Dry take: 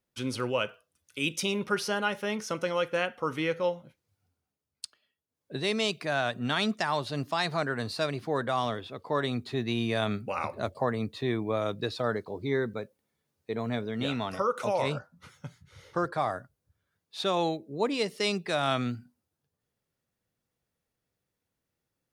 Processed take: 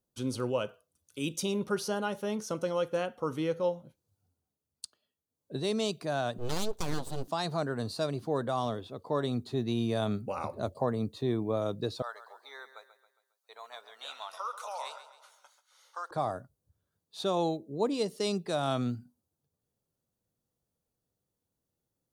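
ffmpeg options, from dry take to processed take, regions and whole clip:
-filter_complex "[0:a]asettb=1/sr,asplit=3[a][b][c];[a]atrim=end=6.384[d];[b]atrim=start=6.38:end=7.28,asetpts=PTS-STARTPTS,afade=t=in:d=0.004:c=qsin,afade=t=out:st=0.896:d=0.004:c=qsin,highpass=61,aeval=exprs='abs(val(0))':c=same[e];[c]atrim=start=7.276[f];[d][e]acrossfade=d=0.004:c1=hsin:c2=qsin[g];[g][f]acrossfade=d=0.004:c1=qsin:c2=hsin,asettb=1/sr,asplit=3[h][i][j];[h]atrim=end=12.024[k];[i]atrim=start=12.02:end=16.11,asetpts=PTS-STARTPTS,afade=t=in:d=0.004:c=qsin,afade=t=out:st=4.086:d=0.004:c=qsin,highpass=f=870:w=0.5412,highpass=f=870:w=1.3066,aecho=1:1:136|272|408|544|680:0.237|0.109|0.0502|0.0231|0.0106,atrim=end_sample=180369[l];[j]atrim=start=16.106[m];[k][l]acrossfade=d=0.004:c1=hsin:c2=qsin[n];[n][m]acrossfade=d=0.004:c1=qsin:c2=hsin,equalizer=f=2.1k:t=o:w=1.3:g=-13.5,bandreject=f=5.2k:w=18"

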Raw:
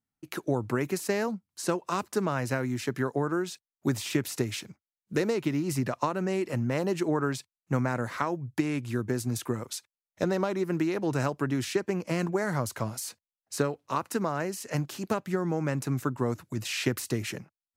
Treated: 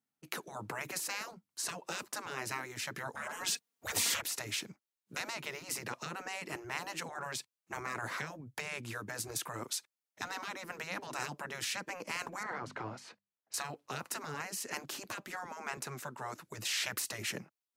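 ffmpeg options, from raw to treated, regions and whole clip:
-filter_complex "[0:a]asettb=1/sr,asplit=3[a][b][c];[a]atrim=end=3.154[d];[b]atrim=start=3.15:end=4.22,asetpts=PTS-STARTPTS,afade=t=in:d=0.004:c=qsin,afade=t=out:st=1.066:d=0.004:c=qsin,lowshelf=f=300:g=9.5,aecho=1:1:4.3:0.64,atrim=end_sample=47187,aeval=exprs='0.355*sin(PI/2*1.58*val(0)/0.355)':c=same[e];[c]atrim=start=4.216[f];[d][e]acrossfade=d=0.004:c1=hsin:c2=qsin[g];[g][f]acrossfade=d=0.004:c1=qsin:c2=hsin,asettb=1/sr,asplit=3[h][i][j];[h]atrim=end=12.434[k];[i]atrim=start=12.43:end=13.54,asetpts=PTS-STARTPTS,afade=t=in:d=0.004:c=qsin,afade=t=out:st=1.106:d=0.004:c=qsin,lowpass=2.5k,bandreject=f=50:t=h:w=6,bandreject=f=100:t=h:w=6,bandreject=f=150:t=h:w=6,bandreject=f=200:t=h:w=6,bandreject=f=250:t=h:w=6[l];[j]atrim=start=13.536[m];[k][l]acrossfade=d=0.004:c1=hsin:c2=qsin[n];[n][m]acrossfade=d=0.004:c1=qsin:c2=hsin,asettb=1/sr,asplit=3[o][p][q];[o]atrim=end=15.774[r];[p]atrim=start=15.77:end=16.42,asetpts=PTS-STARTPTS,afade=t=in:d=0.004:c=qsin,afade=t=out:st=0.646:d=0.004:c=qsin,highpass=f=450:p=1,highshelf=f=11k:g=-4.5[s];[q]atrim=start=16.416[t];[r][s]acrossfade=d=0.004:c1=hsin:c2=qsin[u];[u][t]acrossfade=d=0.004:c1=qsin:c2=hsin,highpass=190,afftfilt=real='re*lt(hypot(re,im),0.0794)':imag='im*lt(hypot(re,im),0.0794)':win_size=1024:overlap=0.75"

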